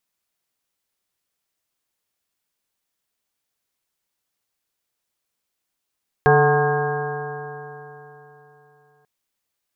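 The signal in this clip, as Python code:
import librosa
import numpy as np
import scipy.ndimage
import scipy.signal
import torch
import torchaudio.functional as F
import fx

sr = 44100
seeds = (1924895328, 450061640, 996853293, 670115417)

y = fx.additive_stiff(sr, length_s=2.79, hz=144.0, level_db=-17.0, upper_db=(-16.5, 3.5, -16.0, 1, -8.0, -5.0, -13.0, -17, -2), decay_s=3.5, stiffness=0.0027)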